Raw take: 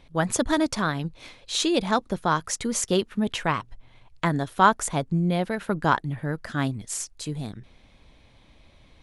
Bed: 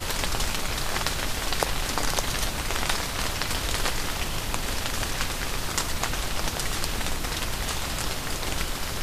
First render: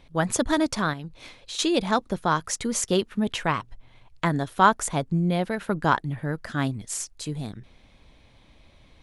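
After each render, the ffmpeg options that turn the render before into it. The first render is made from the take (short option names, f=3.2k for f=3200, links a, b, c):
-filter_complex "[0:a]asettb=1/sr,asplit=3[a][b][c];[a]atrim=end=0.934[d];[b]atrim=start=0.93:end=1.59,asetpts=PTS-STARTPTS,afade=t=in:d=0.004:c=qsin,afade=t=out:st=0.656:d=0.004:c=qsin,acompressor=threshold=-32dB:ratio=6:attack=3.2:release=140:knee=1:detection=peak[e];[c]atrim=start=1.586[f];[d][e]acrossfade=d=0.004:c1=hsin:c2=qsin[g];[g][f]acrossfade=d=0.004:c1=qsin:c2=hsin"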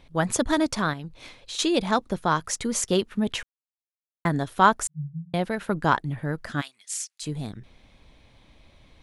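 -filter_complex "[0:a]asettb=1/sr,asplit=3[a][b][c];[a]atrim=end=4.874[d];[b]atrim=start=4.87:end=5.34,asetpts=PTS-STARTPTS,afade=t=in:d=0.004:c=qsin,afade=t=out:st=0.466:d=0.004:c=qsin,asuperpass=centerf=150:order=8:qfactor=6.7[e];[c]atrim=start=5.336[f];[d][e]acrossfade=d=0.004:c1=hsin:c2=qsin[g];[g][f]acrossfade=d=0.004:c1=qsin:c2=hsin,asplit=3[h][i][j];[h]afade=t=out:st=6.6:d=0.02[k];[i]asuperpass=centerf=5200:order=4:qfactor=0.52,afade=t=in:st=6.6:d=0.02,afade=t=out:st=7.22:d=0.02[l];[j]afade=t=in:st=7.22:d=0.02[m];[k][l][m]amix=inputs=3:normalize=0,asplit=3[n][o][p];[n]atrim=end=3.43,asetpts=PTS-STARTPTS,afade=t=out:st=3.426:d=0.004:c=hsin[q];[o]atrim=start=3.43:end=4.25,asetpts=PTS-STARTPTS,volume=0[r];[p]atrim=start=4.25,asetpts=PTS-STARTPTS,afade=t=in:d=0.004:c=hsin[s];[q][r][s]concat=n=3:v=0:a=1"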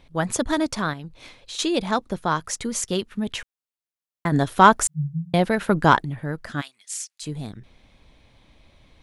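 -filter_complex "[0:a]asettb=1/sr,asplit=3[a][b][c];[a]atrim=end=2.694[d];[b]atrim=start=2.69:end=3.37,asetpts=PTS-STARTPTS,afade=t=in:d=0.004:c=qsin,afade=t=out:st=0.676:d=0.004:c=qsin,equalizer=f=570:w=0.48:g=-3.5[e];[c]atrim=start=3.366[f];[d][e]acrossfade=d=0.004:c1=hsin:c2=qsin[g];[g][f]acrossfade=d=0.004:c1=qsin:c2=hsin,asettb=1/sr,asplit=3[h][i][j];[h]atrim=end=4.324[k];[i]atrim=start=4.32:end=6.05,asetpts=PTS-STARTPTS,afade=t=in:d=0.004:c=qsin,afade=t=out:st=1.726:d=0.004:c=qsin,acontrast=74[l];[j]atrim=start=6.046[m];[k][l]acrossfade=d=0.004:c1=hsin:c2=qsin[n];[n][m]acrossfade=d=0.004:c1=qsin:c2=hsin"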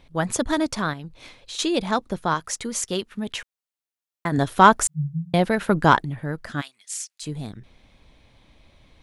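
-filter_complex "[0:a]asettb=1/sr,asplit=3[a][b][c];[a]atrim=end=2.344[d];[b]atrim=start=2.34:end=4.38,asetpts=PTS-STARTPTS,afade=t=in:d=0.004:c=qsin,afade=t=out:st=2.036:d=0.004:c=qsin,lowshelf=f=220:g=-6[e];[c]atrim=start=4.376[f];[d][e]acrossfade=d=0.004:c1=hsin:c2=qsin[g];[g][f]acrossfade=d=0.004:c1=qsin:c2=hsin"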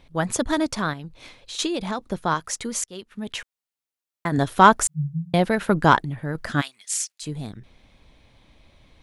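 -filter_complex "[0:a]asettb=1/sr,asplit=3[a][b][c];[a]atrim=end=1.664[d];[b]atrim=start=1.66:end=2.07,asetpts=PTS-STARTPTS,afade=t=in:d=0.004:c=qsin,afade=t=out:st=0.406:d=0.004:c=qsin,acompressor=threshold=-22dB:ratio=6:attack=3.2:release=140:knee=1:detection=peak[e];[c]atrim=start=2.066[f];[d][e]acrossfade=d=0.004:c1=hsin:c2=qsin[g];[g][f]acrossfade=d=0.004:c1=qsin:c2=hsin,asplit=4[h][i][j][k];[h]atrim=end=2.84,asetpts=PTS-STARTPTS,afade=t=out:st=2.836:d=0.004:c=hsin:silence=0.0668344[l];[i]atrim=start=2.84:end=6.352,asetpts=PTS-STARTPTS,afade=t=in:d=0.55:silence=0.0668344[m];[j]atrim=start=6.348:end=7.122,asetpts=PTS-STARTPTS,volume=5.5dB[n];[k]atrim=start=7.118[o];[l][m]concat=n=2:v=0:a=1[p];[p][n]acrossfade=d=0.004:c1=hsin:c2=hsin[q];[q][o]acrossfade=d=0.004:c1=hsin:c2=hsin"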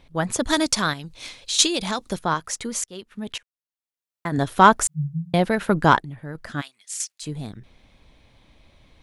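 -filter_complex "[0:a]asettb=1/sr,asplit=3[a][b][c];[a]atrim=end=0.434[d];[b]atrim=start=0.43:end=2.19,asetpts=PTS-STARTPTS,afade=t=in:d=0.004:c=qsin,afade=t=out:st=1.756:d=0.004:c=qsin,equalizer=f=7.5k:w=0.33:g=12.5[e];[c]atrim=start=2.186[f];[d][e]acrossfade=d=0.004:c1=hsin:c2=qsin[g];[g][f]acrossfade=d=0.004:c1=qsin:c2=hsin,asplit=4[h][i][j][k];[h]atrim=end=3.38,asetpts=PTS-STARTPTS,afade=t=out:st=3.376:d=0.004:c=hsin:silence=0.0630957[l];[i]atrim=start=3.38:end=6.002,asetpts=PTS-STARTPTS,afade=t=in:d=1.16:silence=0.0630957[m];[j]atrim=start=5.998:end=7.002,asetpts=PTS-STARTPTS,volume=-6dB[n];[k]atrim=start=6.998[o];[l][m]concat=n=2:v=0:a=1[p];[p][n]acrossfade=d=0.004:c1=hsin:c2=hsin[q];[q][o]acrossfade=d=0.004:c1=hsin:c2=hsin"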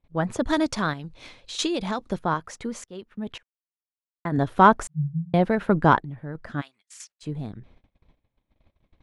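-af "lowpass=f=1.3k:p=1,agate=range=-24dB:threshold=-51dB:ratio=16:detection=peak"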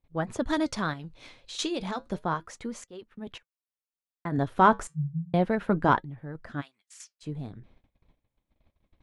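-af "flanger=delay=2.4:depth=5.2:regen=-77:speed=0.32:shape=sinusoidal"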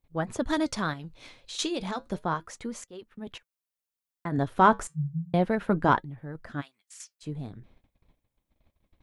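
-af "crystalizer=i=0.5:c=0"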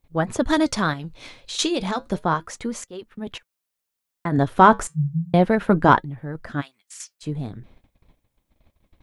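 -af "volume=7.5dB,alimiter=limit=-2dB:level=0:latency=1"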